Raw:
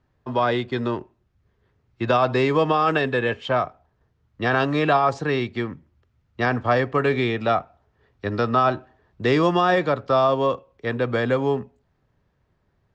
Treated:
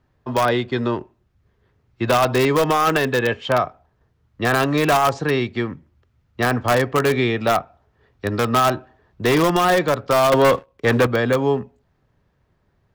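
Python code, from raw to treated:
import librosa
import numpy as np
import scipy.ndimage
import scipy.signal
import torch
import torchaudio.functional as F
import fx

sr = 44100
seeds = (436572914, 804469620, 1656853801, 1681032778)

p1 = fx.leveller(x, sr, passes=2, at=(10.32, 11.07))
p2 = (np.mod(10.0 ** (12.0 / 20.0) * p1 + 1.0, 2.0) - 1.0) / 10.0 ** (12.0 / 20.0)
y = p1 + F.gain(torch.from_numpy(p2), -7.0).numpy()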